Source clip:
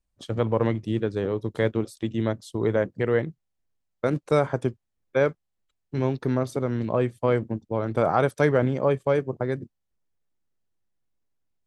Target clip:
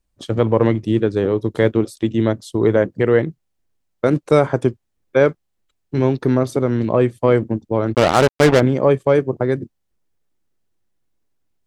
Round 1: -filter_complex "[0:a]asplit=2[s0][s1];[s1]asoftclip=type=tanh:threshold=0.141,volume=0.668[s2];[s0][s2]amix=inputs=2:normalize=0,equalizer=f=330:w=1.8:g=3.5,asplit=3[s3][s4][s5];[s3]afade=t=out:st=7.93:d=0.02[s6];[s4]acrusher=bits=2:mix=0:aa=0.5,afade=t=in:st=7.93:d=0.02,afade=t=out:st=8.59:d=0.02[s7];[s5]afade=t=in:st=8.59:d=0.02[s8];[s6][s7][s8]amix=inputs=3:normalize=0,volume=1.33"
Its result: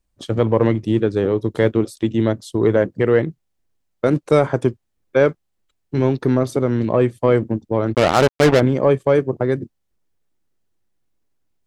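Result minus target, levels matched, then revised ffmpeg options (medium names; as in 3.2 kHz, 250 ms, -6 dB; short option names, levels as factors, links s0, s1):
saturation: distortion +9 dB
-filter_complex "[0:a]asplit=2[s0][s1];[s1]asoftclip=type=tanh:threshold=0.316,volume=0.668[s2];[s0][s2]amix=inputs=2:normalize=0,equalizer=f=330:w=1.8:g=3.5,asplit=3[s3][s4][s5];[s3]afade=t=out:st=7.93:d=0.02[s6];[s4]acrusher=bits=2:mix=0:aa=0.5,afade=t=in:st=7.93:d=0.02,afade=t=out:st=8.59:d=0.02[s7];[s5]afade=t=in:st=8.59:d=0.02[s8];[s6][s7][s8]amix=inputs=3:normalize=0,volume=1.33"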